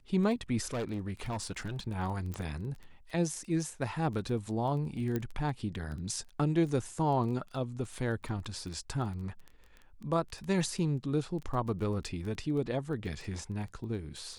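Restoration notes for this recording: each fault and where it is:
crackle 11/s -38 dBFS
0.73–1.8 clipped -31 dBFS
2.34 pop
5.16 pop -20 dBFS

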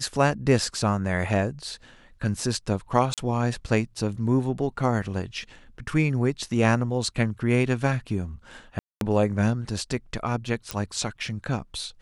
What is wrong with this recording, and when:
3.14–3.18 gap 37 ms
8.79–9.01 gap 0.222 s
10.71 pop -12 dBFS

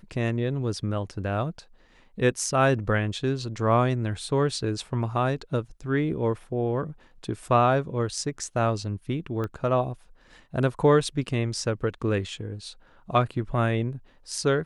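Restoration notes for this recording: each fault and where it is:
9.44 pop -20 dBFS

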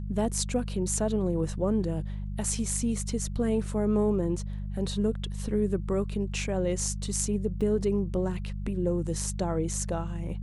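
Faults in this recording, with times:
hum 50 Hz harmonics 4 -34 dBFS
7.61 gap 4 ms

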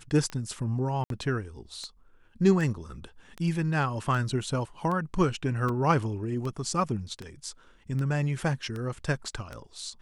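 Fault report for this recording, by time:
tick 78 rpm -23 dBFS
1.04–1.1 gap 62 ms
5.69 gap 2.5 ms

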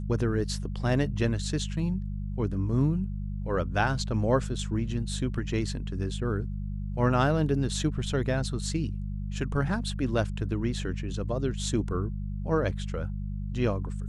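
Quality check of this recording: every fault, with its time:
hum 50 Hz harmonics 4 -33 dBFS

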